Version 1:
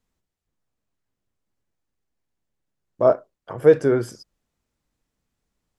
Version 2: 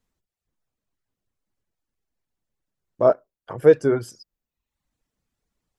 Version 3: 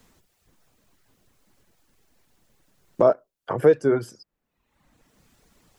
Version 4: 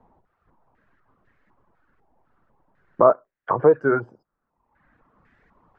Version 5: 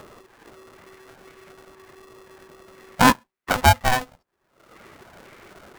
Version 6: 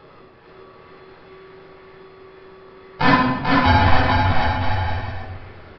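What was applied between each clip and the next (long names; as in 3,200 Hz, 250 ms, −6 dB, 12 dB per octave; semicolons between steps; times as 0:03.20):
reverb reduction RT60 0.78 s
multiband upward and downward compressor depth 70%
low-pass on a step sequencer 4 Hz 850–1,800 Hz; level −1 dB
upward compression, threshold −34 dBFS; ring modulator with a square carrier 380 Hz
bouncing-ball delay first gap 440 ms, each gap 0.7×, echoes 5; rectangular room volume 860 cubic metres, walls mixed, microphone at 4.1 metres; downsampling to 11,025 Hz; level −7.5 dB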